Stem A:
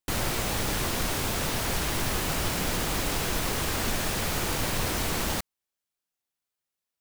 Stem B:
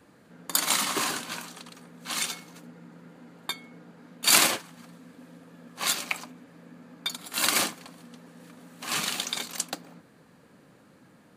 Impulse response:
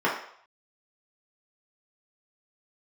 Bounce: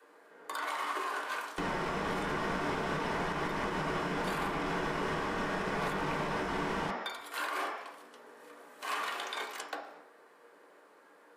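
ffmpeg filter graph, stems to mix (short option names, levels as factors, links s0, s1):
-filter_complex "[0:a]lowpass=6800,aeval=exprs='sgn(val(0))*max(abs(val(0))-0.00224,0)':c=same,adelay=1500,volume=0.708,asplit=2[s0][s1];[s1]volume=0.668[s2];[1:a]highpass=f=370:w=0.5412,highpass=f=370:w=1.3066,volume=0.398,asplit=2[s3][s4];[s4]volume=0.422[s5];[2:a]atrim=start_sample=2205[s6];[s2][s5]amix=inputs=2:normalize=0[s7];[s7][s6]afir=irnorm=-1:irlink=0[s8];[s0][s3][s8]amix=inputs=3:normalize=0,acrossover=split=200|1600|3500[s9][s10][s11][s12];[s9]acompressor=threshold=0.0158:ratio=4[s13];[s10]acompressor=threshold=0.0398:ratio=4[s14];[s11]acompressor=threshold=0.0112:ratio=4[s15];[s12]acompressor=threshold=0.00316:ratio=4[s16];[s13][s14][s15][s16]amix=inputs=4:normalize=0,alimiter=level_in=1.06:limit=0.0631:level=0:latency=1:release=254,volume=0.944"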